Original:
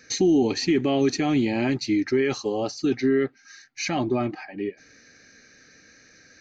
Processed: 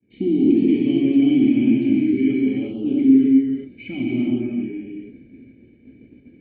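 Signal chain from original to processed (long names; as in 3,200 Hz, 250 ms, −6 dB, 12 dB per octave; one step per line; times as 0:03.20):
noise in a band 43–510 Hz −48 dBFS
formant resonators in series i
reverb whose tail is shaped and stops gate 430 ms flat, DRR −5 dB
downward expander −45 dBFS
level +4.5 dB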